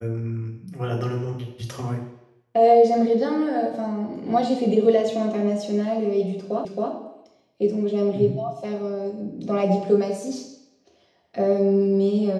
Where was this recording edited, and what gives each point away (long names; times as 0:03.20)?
0:06.65: the same again, the last 0.27 s